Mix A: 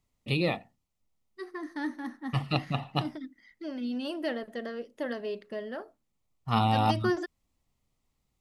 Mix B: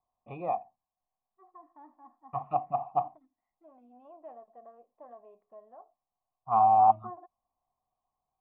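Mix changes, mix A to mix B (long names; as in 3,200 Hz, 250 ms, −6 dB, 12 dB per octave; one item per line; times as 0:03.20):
first voice +11.5 dB
master: add formant resonators in series a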